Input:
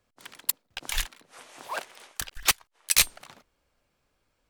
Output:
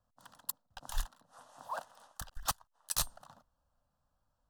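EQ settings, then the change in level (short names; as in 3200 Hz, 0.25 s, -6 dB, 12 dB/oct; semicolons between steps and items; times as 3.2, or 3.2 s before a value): high shelf 2100 Hz -10 dB; fixed phaser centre 930 Hz, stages 4; -2.0 dB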